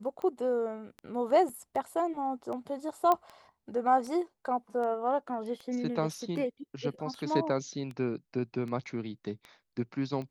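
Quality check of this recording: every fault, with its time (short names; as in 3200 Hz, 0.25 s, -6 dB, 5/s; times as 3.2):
tick 78 rpm -29 dBFS
1.49 gap 4.4 ms
3.12 pop -14 dBFS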